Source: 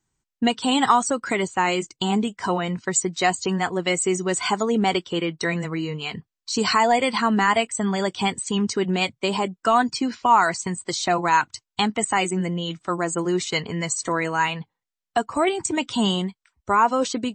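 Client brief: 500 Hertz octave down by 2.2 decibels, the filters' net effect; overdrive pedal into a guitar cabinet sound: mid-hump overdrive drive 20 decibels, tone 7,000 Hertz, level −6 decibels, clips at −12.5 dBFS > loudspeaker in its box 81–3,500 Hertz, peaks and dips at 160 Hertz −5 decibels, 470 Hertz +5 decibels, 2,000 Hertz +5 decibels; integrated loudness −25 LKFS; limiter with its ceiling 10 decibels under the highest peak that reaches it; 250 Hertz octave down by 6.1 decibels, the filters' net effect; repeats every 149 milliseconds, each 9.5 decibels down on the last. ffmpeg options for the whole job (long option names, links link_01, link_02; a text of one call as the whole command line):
ffmpeg -i in.wav -filter_complex "[0:a]equalizer=frequency=250:width_type=o:gain=-6.5,equalizer=frequency=500:width_type=o:gain=-3.5,alimiter=limit=-15dB:level=0:latency=1,aecho=1:1:149|298|447|596:0.335|0.111|0.0365|0.012,asplit=2[link_01][link_02];[link_02]highpass=frequency=720:poles=1,volume=20dB,asoftclip=type=tanh:threshold=-12.5dB[link_03];[link_01][link_03]amix=inputs=2:normalize=0,lowpass=frequency=7000:poles=1,volume=-6dB,highpass=81,equalizer=frequency=160:width_type=q:width=4:gain=-5,equalizer=frequency=470:width_type=q:width=4:gain=5,equalizer=frequency=2000:width_type=q:width=4:gain=5,lowpass=frequency=3500:width=0.5412,lowpass=frequency=3500:width=1.3066,volume=-5dB" out.wav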